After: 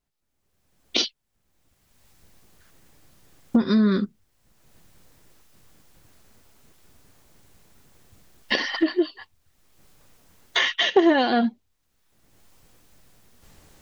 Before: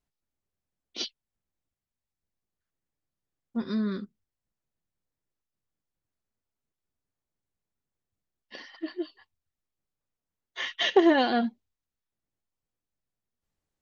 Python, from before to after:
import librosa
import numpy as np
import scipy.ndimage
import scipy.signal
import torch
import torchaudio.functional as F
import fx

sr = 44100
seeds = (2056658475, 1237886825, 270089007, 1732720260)

y = fx.recorder_agc(x, sr, target_db=-15.0, rise_db_per_s=26.0, max_gain_db=30)
y = y * librosa.db_to_amplitude(2.5)